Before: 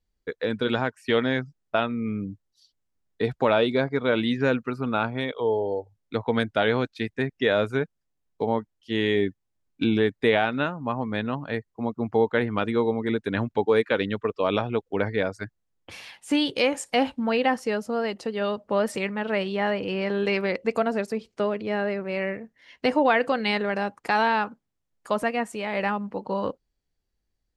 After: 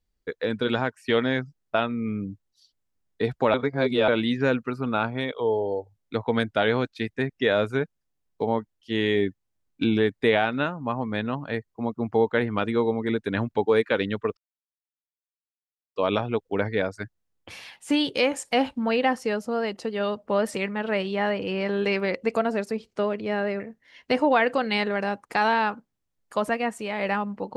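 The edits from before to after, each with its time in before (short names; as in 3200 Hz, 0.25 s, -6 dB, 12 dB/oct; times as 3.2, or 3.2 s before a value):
3.54–4.08 reverse
14.37 insert silence 1.59 s
22.01–22.34 cut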